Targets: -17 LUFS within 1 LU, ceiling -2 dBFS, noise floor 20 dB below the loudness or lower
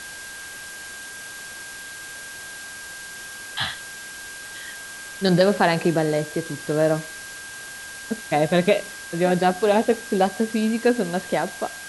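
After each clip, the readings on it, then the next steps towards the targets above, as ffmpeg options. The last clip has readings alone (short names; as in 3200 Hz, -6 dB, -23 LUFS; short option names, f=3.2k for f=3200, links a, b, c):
steady tone 1600 Hz; tone level -37 dBFS; noise floor -37 dBFS; noise floor target -43 dBFS; loudness -22.5 LUFS; peak -4.0 dBFS; loudness target -17.0 LUFS
-> -af "bandreject=f=1.6k:w=30"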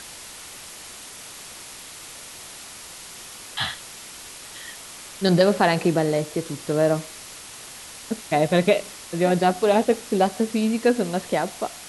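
steady tone none; noise floor -41 dBFS; noise floor target -43 dBFS
-> -af "afftdn=nr=6:nf=-41"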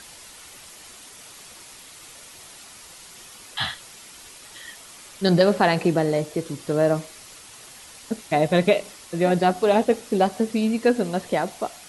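noise floor -45 dBFS; loudness -22.5 LUFS; peak -3.5 dBFS; loudness target -17.0 LUFS
-> -af "volume=5.5dB,alimiter=limit=-2dB:level=0:latency=1"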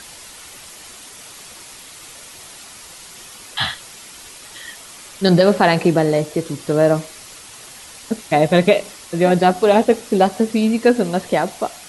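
loudness -17.0 LUFS; peak -2.0 dBFS; noise floor -39 dBFS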